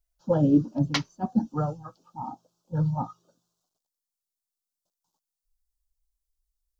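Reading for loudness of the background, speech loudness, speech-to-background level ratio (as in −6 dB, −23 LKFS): −32.0 LKFS, −27.0 LKFS, 5.0 dB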